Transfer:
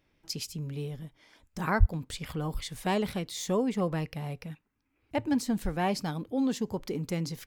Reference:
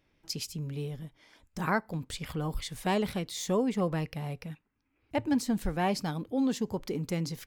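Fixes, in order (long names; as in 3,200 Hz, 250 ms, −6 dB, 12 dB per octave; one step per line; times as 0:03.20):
0:01.79–0:01.91: high-pass filter 140 Hz 24 dB per octave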